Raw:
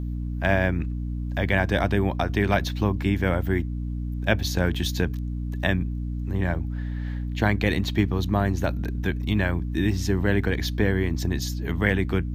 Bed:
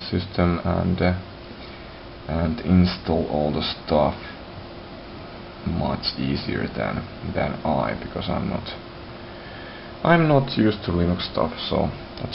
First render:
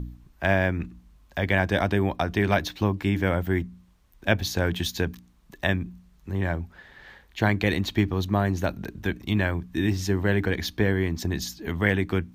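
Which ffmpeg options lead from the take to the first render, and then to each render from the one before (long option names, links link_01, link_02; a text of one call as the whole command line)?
ffmpeg -i in.wav -af "bandreject=frequency=60:width_type=h:width=4,bandreject=frequency=120:width_type=h:width=4,bandreject=frequency=180:width_type=h:width=4,bandreject=frequency=240:width_type=h:width=4,bandreject=frequency=300:width_type=h:width=4" out.wav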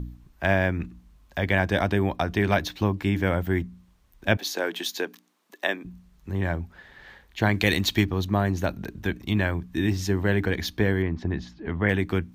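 ffmpeg -i in.wav -filter_complex "[0:a]asettb=1/sr,asplit=3[link_01][link_02][link_03];[link_01]atrim=end=4.374[link_04];[link_02]atrim=start=4.37:end=5.85,asetpts=PTS-STARTPTS,afade=type=in:duration=0.004:curve=qsin,afade=type=out:start_time=1.476:duration=0.004:curve=qsin,highpass=frequency=300:width=0.5412,highpass=frequency=300:width=1.3066[link_05];[link_03]atrim=start=5.846[link_06];[link_04][link_05]acrossfade=duration=0.004:curve1=hsin:curve2=qsin[link_07];[link_07][link_06]acrossfade=duration=0.004:curve1=qsin:curve2=hsin,asplit=3[link_08][link_09][link_10];[link_08]afade=type=out:start_time=7.53:duration=0.02[link_11];[link_09]highshelf=frequency=2500:gain=10,afade=type=in:start_time=7.53:duration=0.02,afade=type=out:start_time=8.04:duration=0.02[link_12];[link_10]afade=type=in:start_time=8.04:duration=0.02[link_13];[link_11][link_12][link_13]amix=inputs=3:normalize=0,asettb=1/sr,asplit=3[link_14][link_15][link_16];[link_14]atrim=end=11.024[link_17];[link_15]atrim=start=11.02:end=11.89,asetpts=PTS-STARTPTS,afade=type=in:duration=0.004:curve=qsin,afade=type=out:start_time=0.866:duration=0.004:curve=qsin,lowpass=2100[link_18];[link_16]atrim=start=11.886[link_19];[link_17][link_18]acrossfade=duration=0.004:curve1=hsin:curve2=qsin[link_20];[link_20][link_19]acrossfade=duration=0.004:curve1=qsin:curve2=hsin" out.wav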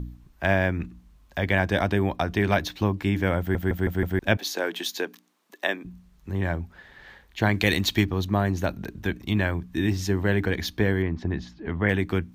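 ffmpeg -i in.wav -filter_complex "[0:a]asplit=6[link_01][link_02][link_03][link_04][link_05][link_06];[link_01]atrim=end=3.552[link_07];[link_02]atrim=start=3.388:end=3.552[link_08];[link_03]atrim=start=3.388:end=3.552[link_09];[link_04]atrim=start=3.388:end=3.552[link_10];[link_05]atrim=start=3.388:end=3.552[link_11];[link_06]atrim=start=4.188[link_12];[link_07][link_08]acrossfade=duration=0.004:curve1=hsin:curve2=hsin[link_13];[link_13][link_09]acrossfade=duration=0.004:curve1=hsin:curve2=hsin[link_14];[link_14][link_10]acrossfade=duration=0.004:curve1=hsin:curve2=hsin[link_15];[link_15][link_11]acrossfade=duration=0.004:curve1=hsin:curve2=hsin[link_16];[link_16][link_12]acrossfade=duration=0.004:curve1=hsin:curve2=hsin" out.wav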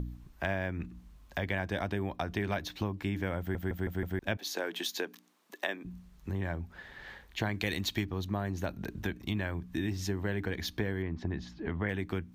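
ffmpeg -i in.wav -af "acompressor=threshold=-34dB:ratio=2.5" out.wav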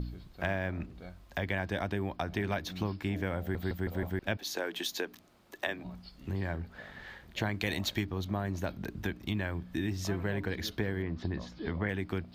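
ffmpeg -i in.wav -i bed.wav -filter_complex "[1:a]volume=-28dB[link_01];[0:a][link_01]amix=inputs=2:normalize=0" out.wav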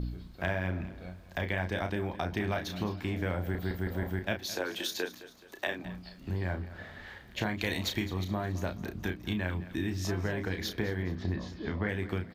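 ffmpeg -i in.wav -filter_complex "[0:a]asplit=2[link_01][link_02];[link_02]adelay=33,volume=-6.5dB[link_03];[link_01][link_03]amix=inputs=2:normalize=0,aecho=1:1:212|424|636|848:0.158|0.0697|0.0307|0.0135" out.wav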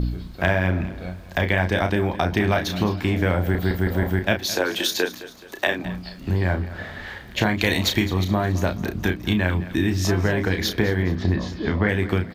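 ffmpeg -i in.wav -af "volume=11.5dB" out.wav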